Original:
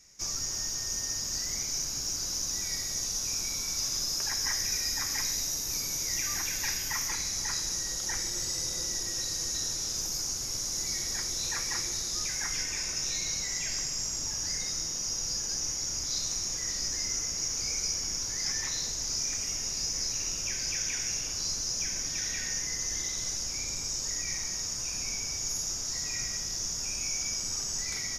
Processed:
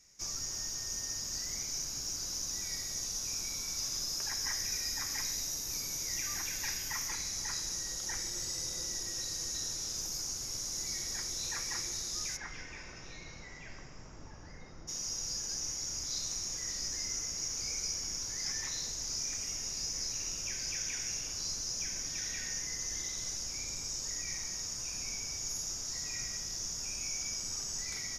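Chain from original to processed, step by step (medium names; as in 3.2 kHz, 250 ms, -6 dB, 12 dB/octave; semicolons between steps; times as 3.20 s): 12.36–14.87 s: low-pass 2.8 kHz -> 1.3 kHz 12 dB/octave; trim -5 dB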